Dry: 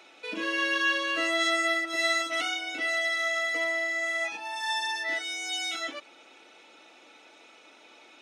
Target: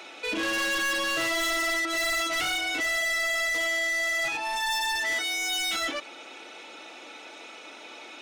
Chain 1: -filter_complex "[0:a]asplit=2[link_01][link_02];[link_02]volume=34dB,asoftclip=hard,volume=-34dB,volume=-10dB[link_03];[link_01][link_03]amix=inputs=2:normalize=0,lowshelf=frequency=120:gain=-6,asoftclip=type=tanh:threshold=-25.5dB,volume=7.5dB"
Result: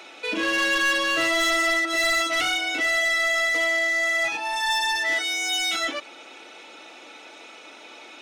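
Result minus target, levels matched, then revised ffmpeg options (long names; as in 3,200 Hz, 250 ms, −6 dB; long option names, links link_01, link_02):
soft clipping: distortion −6 dB
-filter_complex "[0:a]asplit=2[link_01][link_02];[link_02]volume=34dB,asoftclip=hard,volume=-34dB,volume=-10dB[link_03];[link_01][link_03]amix=inputs=2:normalize=0,lowshelf=frequency=120:gain=-6,asoftclip=type=tanh:threshold=-33dB,volume=7.5dB"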